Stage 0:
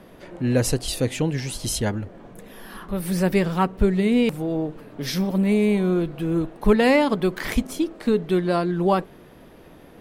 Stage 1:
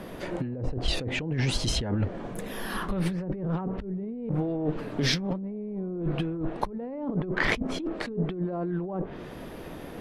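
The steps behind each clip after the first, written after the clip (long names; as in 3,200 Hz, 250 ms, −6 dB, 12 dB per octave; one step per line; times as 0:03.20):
treble cut that deepens with the level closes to 640 Hz, closed at −16.5 dBFS
compressor whose output falls as the input rises −30 dBFS, ratio −1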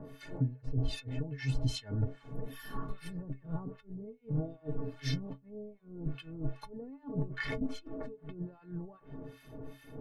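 low-shelf EQ 290 Hz +11 dB
two-band tremolo in antiphase 2.5 Hz, depth 100%, crossover 1,300 Hz
stiff-string resonator 130 Hz, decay 0.23 s, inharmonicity 0.03
level +1 dB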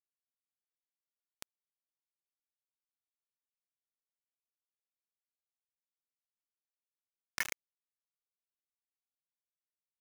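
resonant band-pass 2,300 Hz, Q 2.5
bit reduction 6 bits
downward compressor, threshold −41 dBFS, peak gain reduction 7.5 dB
level +11 dB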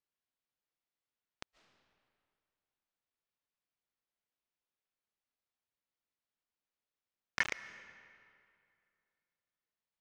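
high-frequency loss of the air 150 metres
convolution reverb RT60 2.4 s, pre-delay 105 ms, DRR 14 dB
level +5.5 dB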